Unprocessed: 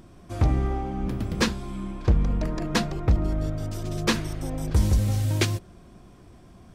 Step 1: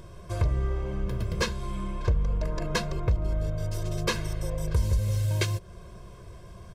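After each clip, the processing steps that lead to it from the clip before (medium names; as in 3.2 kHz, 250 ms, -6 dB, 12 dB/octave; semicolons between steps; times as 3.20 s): comb 1.9 ms, depth 93%; compression 2:1, threshold -31 dBFS, peak gain reduction 11.5 dB; trim +1.5 dB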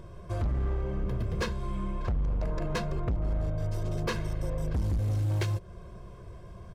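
treble shelf 2.6 kHz -9.5 dB; overload inside the chain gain 25 dB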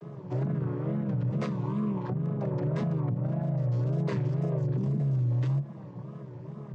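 vocoder on a held chord minor triad, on C3; wow and flutter 140 cents; peak limiter -31 dBFS, peak gain reduction 10 dB; trim +9 dB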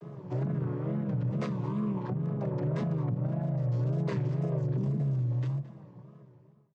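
fade out at the end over 1.73 s; delay 220 ms -17.5 dB; trim -1.5 dB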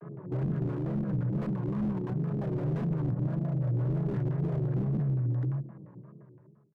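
LFO low-pass square 5.8 Hz 340–1600 Hz; distance through air 200 m; slew-rate limiter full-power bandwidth 9.8 Hz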